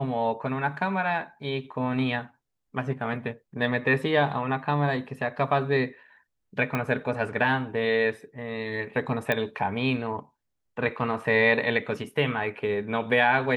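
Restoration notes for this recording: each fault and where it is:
6.75 pop -15 dBFS
9.32 pop -12 dBFS

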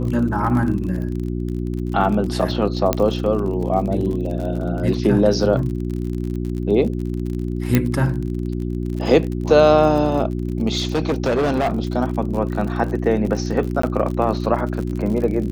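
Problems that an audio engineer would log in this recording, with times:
crackle 43/s -27 dBFS
hum 60 Hz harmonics 6 -24 dBFS
2.93 pop -3 dBFS
7.75 pop -2 dBFS
10.77–11.78 clipped -15.5 dBFS
13.82–13.83 gap 14 ms

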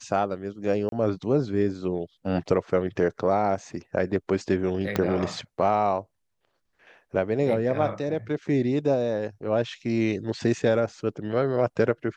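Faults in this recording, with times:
0.89–0.92 gap 32 ms
4.96 pop -10 dBFS

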